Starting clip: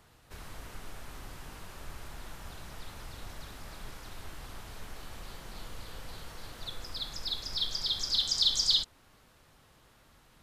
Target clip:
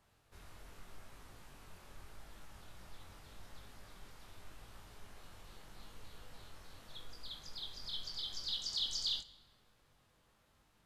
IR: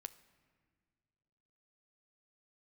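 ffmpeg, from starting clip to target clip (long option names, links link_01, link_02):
-filter_complex "[0:a]flanger=delay=18:depth=3.7:speed=0.86[link_01];[1:a]atrim=start_sample=2205[link_02];[link_01][link_02]afir=irnorm=-1:irlink=0,asetrate=42336,aresample=44100,volume=-2.5dB"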